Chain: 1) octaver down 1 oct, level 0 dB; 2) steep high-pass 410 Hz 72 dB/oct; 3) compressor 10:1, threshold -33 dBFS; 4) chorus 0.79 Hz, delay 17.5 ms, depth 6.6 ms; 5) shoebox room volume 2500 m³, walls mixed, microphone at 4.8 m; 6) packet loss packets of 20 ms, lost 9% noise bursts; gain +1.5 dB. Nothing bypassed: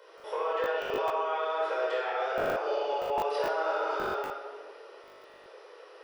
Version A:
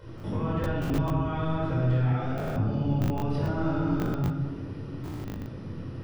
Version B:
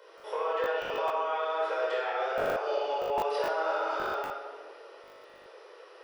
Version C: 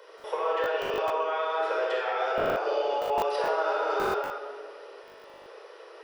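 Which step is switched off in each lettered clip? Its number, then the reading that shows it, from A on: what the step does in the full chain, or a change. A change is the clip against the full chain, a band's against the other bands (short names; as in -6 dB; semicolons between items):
2, 125 Hz band +37.0 dB; 1, 250 Hz band -2.0 dB; 4, momentary loudness spread change +2 LU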